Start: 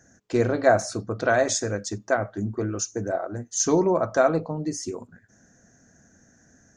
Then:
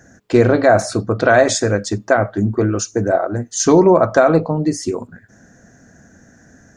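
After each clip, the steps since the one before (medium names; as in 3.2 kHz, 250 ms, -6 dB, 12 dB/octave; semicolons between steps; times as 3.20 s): peaking EQ 6.2 kHz -7.5 dB 0.53 oct; loudness maximiser +12 dB; trim -1 dB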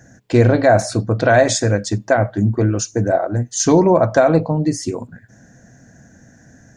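graphic EQ with 31 bands 125 Hz +8 dB, 400 Hz -5 dB, 1.25 kHz -8 dB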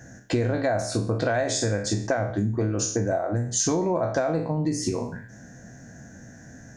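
spectral sustain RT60 0.43 s; compression 6:1, threshold -22 dBFS, peak gain reduction 14.5 dB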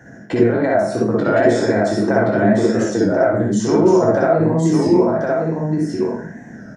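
delay 1064 ms -3.5 dB; reverberation RT60 0.15 s, pre-delay 57 ms, DRR -1.5 dB; warped record 33 1/3 rpm, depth 100 cents; trim -4.5 dB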